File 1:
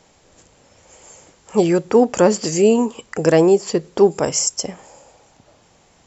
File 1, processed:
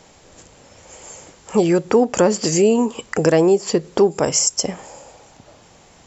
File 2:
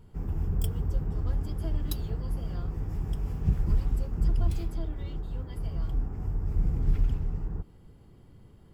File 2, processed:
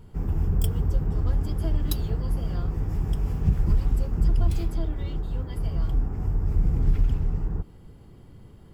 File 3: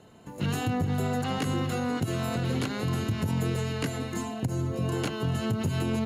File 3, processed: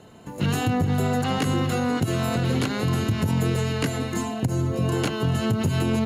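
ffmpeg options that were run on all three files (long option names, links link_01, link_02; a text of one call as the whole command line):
ffmpeg -i in.wav -af "acompressor=threshold=-22dB:ratio=2,volume=5.5dB" out.wav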